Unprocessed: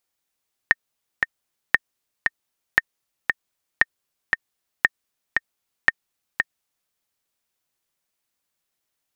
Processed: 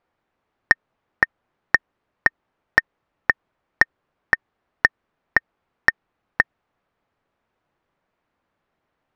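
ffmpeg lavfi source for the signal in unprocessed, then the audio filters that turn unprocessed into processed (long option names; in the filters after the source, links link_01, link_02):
-f lavfi -i "aevalsrc='pow(10,(-1-4.5*gte(mod(t,2*60/116),60/116))/20)*sin(2*PI*1830*mod(t,60/116))*exp(-6.91*mod(t,60/116)/0.03)':duration=6.2:sample_rate=44100"
-af "lowpass=1400,asoftclip=type=tanh:threshold=-11dB,alimiter=level_in=14.5dB:limit=-1dB:release=50:level=0:latency=1"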